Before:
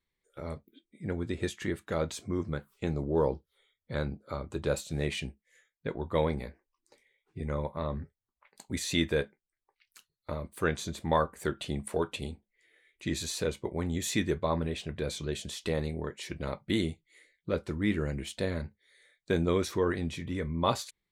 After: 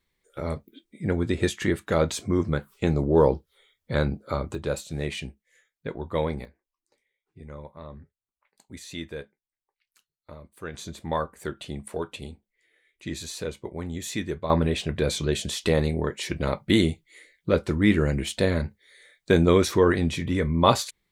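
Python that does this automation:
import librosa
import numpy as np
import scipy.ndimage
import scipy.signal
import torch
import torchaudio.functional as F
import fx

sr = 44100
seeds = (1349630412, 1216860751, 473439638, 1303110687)

y = fx.gain(x, sr, db=fx.steps((0.0, 8.5), (4.55, 1.5), (6.45, -8.0), (10.74, -1.0), (14.5, 9.0)))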